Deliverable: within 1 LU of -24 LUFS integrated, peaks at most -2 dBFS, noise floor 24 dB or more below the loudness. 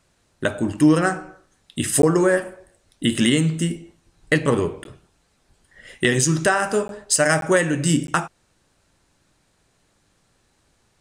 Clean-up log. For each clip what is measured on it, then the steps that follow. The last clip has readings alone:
dropouts 5; longest dropout 12 ms; loudness -20.0 LUFS; peak -5.5 dBFS; loudness target -24.0 LUFS
-> interpolate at 2.02/4.84/6.88/7.41/8.07, 12 ms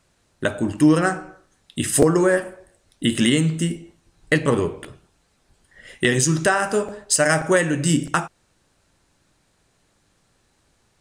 dropouts 0; loudness -20.0 LUFS; peak -2.0 dBFS; loudness target -24.0 LUFS
-> gain -4 dB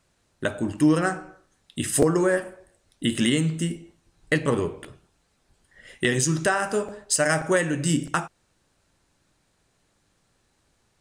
loudness -24.0 LUFS; peak -6.0 dBFS; noise floor -69 dBFS

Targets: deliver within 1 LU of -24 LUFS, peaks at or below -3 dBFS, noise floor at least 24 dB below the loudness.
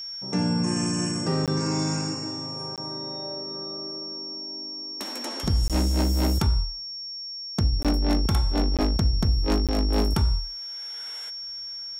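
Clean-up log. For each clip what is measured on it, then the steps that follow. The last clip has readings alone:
dropouts 6; longest dropout 17 ms; steady tone 5500 Hz; tone level -33 dBFS; loudness -26.5 LUFS; peak -14.0 dBFS; loudness target -24.0 LUFS
-> interpolate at 1.46/2.76/5.68/7.83/8.77/9.67, 17 ms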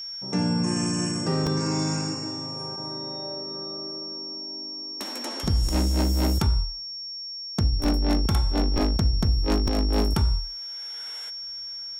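dropouts 0; steady tone 5500 Hz; tone level -33 dBFS
-> notch 5500 Hz, Q 30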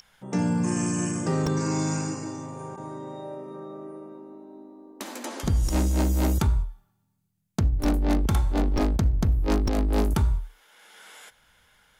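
steady tone none; loudness -26.0 LUFS; peak -13.5 dBFS; loudness target -24.0 LUFS
-> gain +2 dB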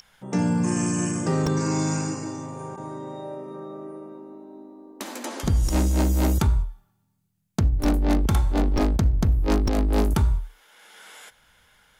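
loudness -24.0 LUFS; peak -11.5 dBFS; noise floor -69 dBFS

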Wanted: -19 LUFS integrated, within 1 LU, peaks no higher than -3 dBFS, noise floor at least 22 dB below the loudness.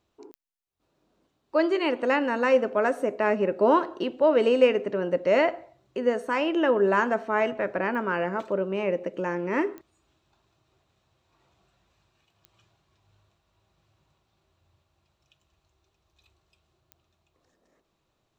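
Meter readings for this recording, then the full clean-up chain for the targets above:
clicks 5; loudness -25.0 LUFS; peak -7.5 dBFS; loudness target -19.0 LUFS
-> de-click; gain +6 dB; limiter -3 dBFS

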